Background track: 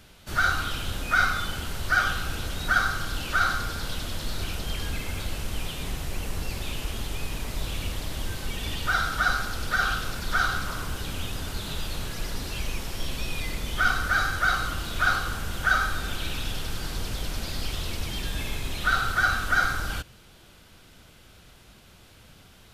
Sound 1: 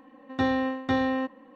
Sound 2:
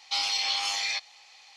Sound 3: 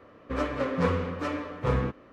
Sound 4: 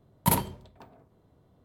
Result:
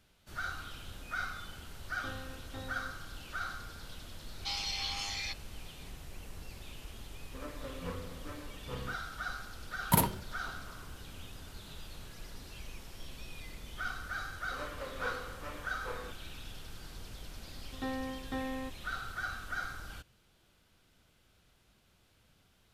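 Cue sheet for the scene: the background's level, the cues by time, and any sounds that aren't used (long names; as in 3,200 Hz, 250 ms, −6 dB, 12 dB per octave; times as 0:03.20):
background track −15.5 dB
0:01.65: mix in 1 −1.5 dB + stiff-string resonator 100 Hz, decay 0.54 s, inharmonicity 0.008
0:04.34: mix in 2 −9 dB
0:07.04: mix in 3 −16 dB
0:09.66: mix in 4 −2.5 dB
0:14.21: mix in 3 −11.5 dB + high-pass filter 460 Hz
0:17.43: mix in 1 −12.5 dB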